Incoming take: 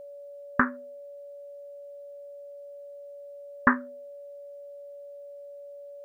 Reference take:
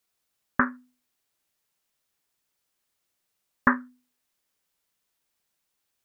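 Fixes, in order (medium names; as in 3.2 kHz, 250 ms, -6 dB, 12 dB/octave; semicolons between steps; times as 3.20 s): band-stop 570 Hz, Q 30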